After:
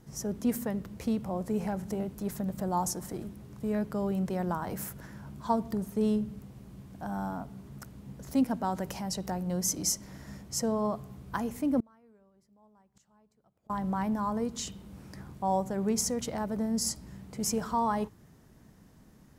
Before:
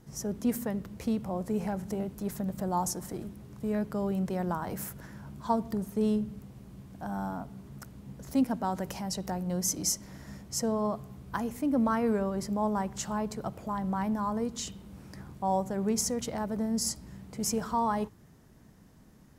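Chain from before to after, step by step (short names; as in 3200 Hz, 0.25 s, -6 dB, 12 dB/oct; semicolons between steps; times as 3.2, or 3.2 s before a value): 11.8–13.7 flipped gate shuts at -32 dBFS, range -33 dB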